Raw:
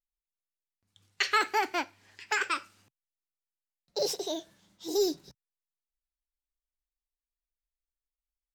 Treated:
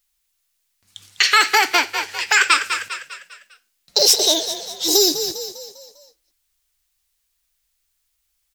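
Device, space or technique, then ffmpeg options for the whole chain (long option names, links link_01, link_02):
mastering chain: -filter_complex "[0:a]asplit=6[link_01][link_02][link_03][link_04][link_05][link_06];[link_02]adelay=200,afreqshift=34,volume=-13dB[link_07];[link_03]adelay=400,afreqshift=68,volume=-19.7dB[link_08];[link_04]adelay=600,afreqshift=102,volume=-26.5dB[link_09];[link_05]adelay=800,afreqshift=136,volume=-33.2dB[link_10];[link_06]adelay=1000,afreqshift=170,volume=-40dB[link_11];[link_01][link_07][link_08][link_09][link_10][link_11]amix=inputs=6:normalize=0,equalizer=frequency=220:width_type=o:width=2.8:gain=-2.5,acompressor=threshold=-33dB:ratio=2,tiltshelf=frequency=1400:gain=-6.5,alimiter=level_in=20dB:limit=-1dB:release=50:level=0:latency=1,volume=-1dB"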